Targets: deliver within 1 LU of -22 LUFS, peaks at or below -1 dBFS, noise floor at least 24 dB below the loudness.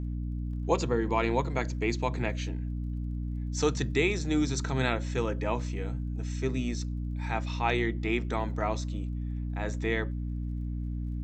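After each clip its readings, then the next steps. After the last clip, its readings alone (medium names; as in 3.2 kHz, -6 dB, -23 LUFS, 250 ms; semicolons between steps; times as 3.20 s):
tick rate 26 per s; hum 60 Hz; highest harmonic 300 Hz; hum level -31 dBFS; loudness -31.0 LUFS; peak level -11.5 dBFS; loudness target -22.0 LUFS
-> de-click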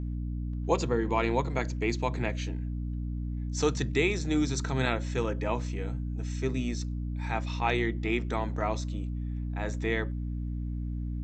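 tick rate 0 per s; hum 60 Hz; highest harmonic 300 Hz; hum level -31 dBFS
-> de-hum 60 Hz, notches 5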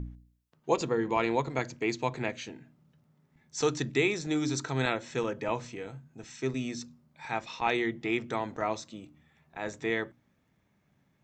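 hum not found; loudness -32.0 LUFS; peak level -12.0 dBFS; loudness target -22.0 LUFS
-> trim +10 dB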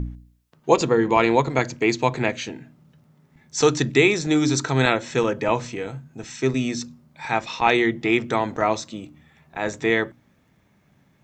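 loudness -22.0 LUFS; peak level -2.0 dBFS; noise floor -61 dBFS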